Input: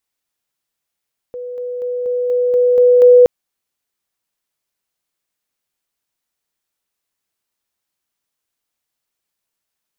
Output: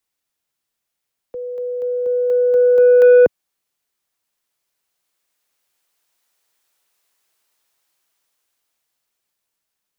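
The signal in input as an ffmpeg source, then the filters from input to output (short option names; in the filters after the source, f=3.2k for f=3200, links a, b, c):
-f lavfi -i "aevalsrc='pow(10,(-24.5+3*floor(t/0.24))/20)*sin(2*PI*493*t)':d=1.92:s=44100"
-filter_complex "[0:a]acrossover=split=120|210|340[a][b][c][d];[d]dynaudnorm=f=410:g=11:m=11dB[e];[a][b][c][e]amix=inputs=4:normalize=0,asoftclip=type=tanh:threshold=-5dB"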